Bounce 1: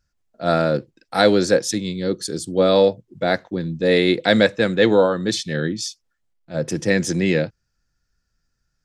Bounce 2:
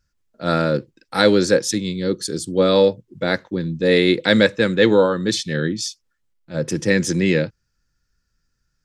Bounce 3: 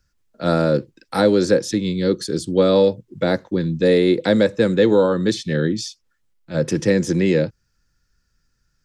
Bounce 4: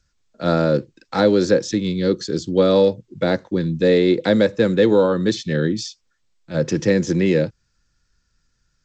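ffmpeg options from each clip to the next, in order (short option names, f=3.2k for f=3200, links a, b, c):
-af "equalizer=f=700:w=5.8:g=-12,volume=1.5dB"
-filter_complex "[0:a]acrossover=split=340|1000|4900[a][b][c][d];[a]acompressor=threshold=-22dB:ratio=4[e];[b]acompressor=threshold=-18dB:ratio=4[f];[c]acompressor=threshold=-35dB:ratio=4[g];[d]acompressor=threshold=-40dB:ratio=4[h];[e][f][g][h]amix=inputs=4:normalize=0,volume=3.5dB"
-ar 16000 -c:a g722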